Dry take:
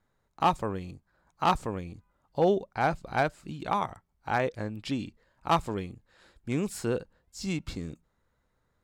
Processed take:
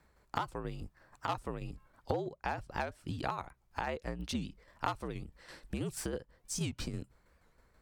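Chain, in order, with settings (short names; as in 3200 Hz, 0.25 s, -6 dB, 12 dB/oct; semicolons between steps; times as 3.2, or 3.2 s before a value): varispeed +13%; frequency shift -66 Hz; compressor 6:1, threshold -41 dBFS, peak gain reduction 21 dB; tremolo saw down 6.2 Hz, depth 50%; record warp 78 rpm, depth 160 cents; gain +9 dB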